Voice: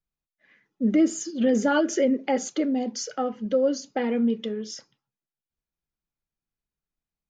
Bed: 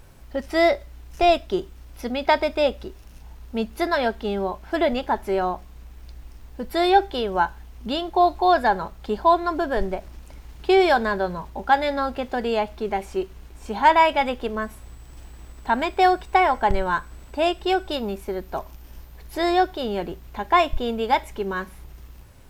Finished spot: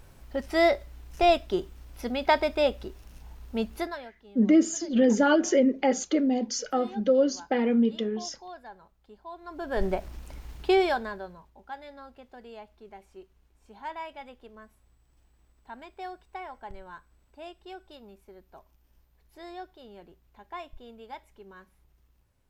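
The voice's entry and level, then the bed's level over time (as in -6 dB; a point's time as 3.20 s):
3.55 s, +0.5 dB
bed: 3.76 s -3.5 dB
4.12 s -26 dB
9.31 s -26 dB
9.86 s -0.5 dB
10.54 s -0.5 dB
11.54 s -22 dB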